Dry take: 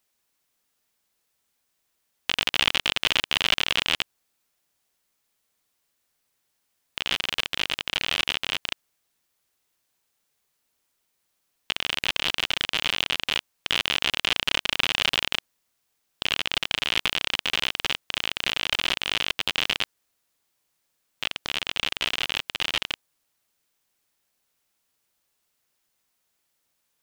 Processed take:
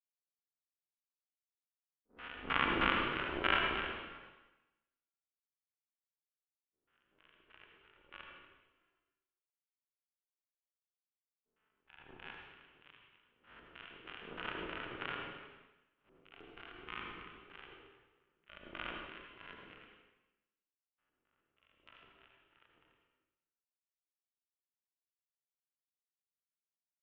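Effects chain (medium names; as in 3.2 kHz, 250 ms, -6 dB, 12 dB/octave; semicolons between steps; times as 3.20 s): every event in the spectrogram widened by 480 ms; gate -15 dBFS, range -57 dB; FFT filter 740 Hz 0 dB, 1.4 kHz +7 dB, 3.1 kHz -20 dB, 4.4 kHz -25 dB; LFO low-pass square 3.2 Hz 390–3000 Hz; in parallel at 0 dB: compression, threshold -47 dBFS, peak gain reduction 25.5 dB; on the sum: harmonic-percussive split percussive -14 dB; on a send at -1.5 dB: reverberation RT60 1.0 s, pre-delay 71 ms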